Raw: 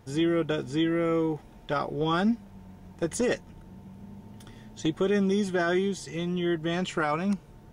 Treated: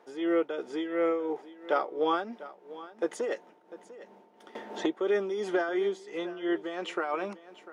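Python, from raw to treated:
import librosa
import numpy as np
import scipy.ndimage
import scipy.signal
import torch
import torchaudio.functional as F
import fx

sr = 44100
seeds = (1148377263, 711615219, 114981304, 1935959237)

p1 = fx.lowpass(x, sr, hz=1500.0, slope=6)
p2 = p1 + fx.echo_single(p1, sr, ms=697, db=-16.5, dry=0)
p3 = p2 * (1.0 - 0.64 / 2.0 + 0.64 / 2.0 * np.cos(2.0 * np.pi * 2.9 * (np.arange(len(p2)) / sr)))
p4 = scipy.signal.sosfilt(scipy.signal.butter(4, 360.0, 'highpass', fs=sr, output='sos'), p3)
p5 = fx.band_squash(p4, sr, depth_pct=70, at=(4.55, 5.69))
y = F.gain(torch.from_numpy(p5), 4.0).numpy()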